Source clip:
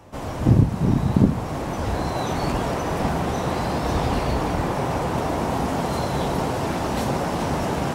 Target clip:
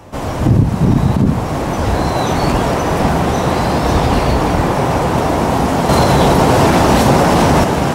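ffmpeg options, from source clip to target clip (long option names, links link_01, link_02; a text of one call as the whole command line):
ffmpeg -i in.wav -filter_complex "[0:a]asettb=1/sr,asplit=3[link_01][link_02][link_03];[link_01]atrim=end=5.894[link_04];[link_02]atrim=start=5.89:end=7.64,asetpts=PTS-STARTPTS,afade=type=in:duration=0.004:curve=qsin,afade=type=out:start_time=1.746:duration=0.004:curve=qsin,acontrast=73[link_05];[link_03]atrim=start=7.636[link_06];[link_04][link_05]acrossfade=duration=0.004:curve1=hsin:curve2=qsin[link_07];[link_07][link_06]acrossfade=duration=0.004:curve1=qsin:curve2=hsin,alimiter=level_in=10.5dB:limit=-1dB:release=50:level=0:latency=1,volume=-1dB" out.wav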